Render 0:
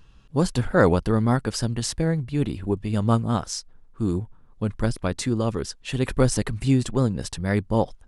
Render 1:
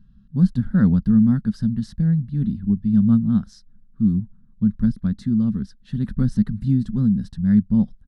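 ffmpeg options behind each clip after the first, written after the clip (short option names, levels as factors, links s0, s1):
-af "firequalizer=gain_entry='entry(120,0);entry(210,13);entry(320,-14);entry(500,-20);entry(910,-20);entry(1600,-9);entry(2400,-25);entry(3800,-12);entry(7200,-25);entry(12000,-20)':delay=0.05:min_phase=1"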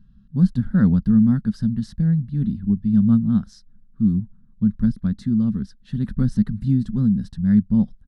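-af anull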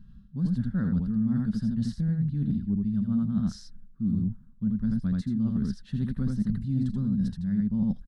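-af "aecho=1:1:82:0.631,areverse,acompressor=threshold=0.0501:ratio=6,areverse,volume=1.19"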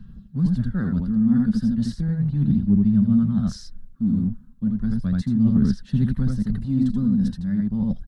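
-filter_complex "[0:a]aphaser=in_gain=1:out_gain=1:delay=4.1:decay=0.4:speed=0.35:type=sinusoidal,acrossover=split=110|560[s0][s1][s2];[s0]aeval=exprs='sgn(val(0))*max(abs(val(0))-0.00188,0)':c=same[s3];[s3][s1][s2]amix=inputs=3:normalize=0,volume=1.88"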